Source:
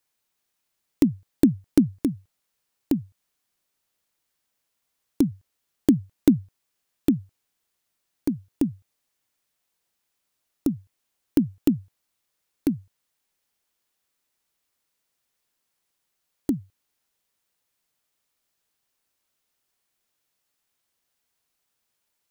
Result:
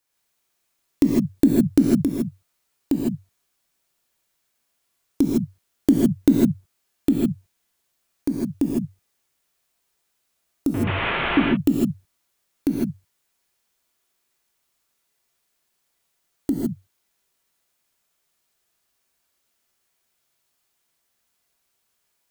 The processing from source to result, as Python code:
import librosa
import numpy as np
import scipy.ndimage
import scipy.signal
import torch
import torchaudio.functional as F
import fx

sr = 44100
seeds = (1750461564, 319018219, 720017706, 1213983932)

y = fx.delta_mod(x, sr, bps=16000, step_db=-21.5, at=(10.74, 11.4))
y = fx.rev_gated(y, sr, seeds[0], gate_ms=180, shape='rising', drr_db=-3.5)